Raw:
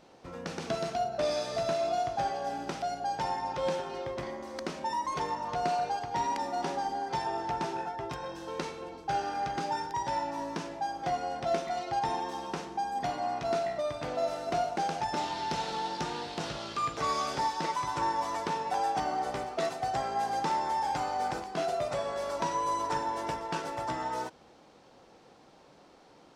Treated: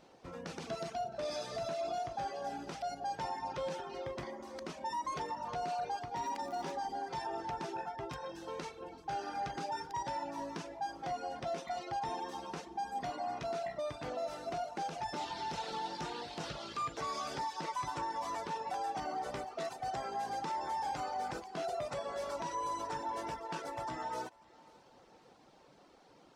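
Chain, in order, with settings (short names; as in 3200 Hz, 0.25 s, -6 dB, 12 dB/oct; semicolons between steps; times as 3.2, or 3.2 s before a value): reverb removal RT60 0.61 s; limiter -27 dBFS, peak gain reduction 9 dB; 6.16–6.71 crackle 110/s -42 dBFS; on a send: thinning echo 0.542 s, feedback 44%, level -23 dB; on the sum: gain -3 dB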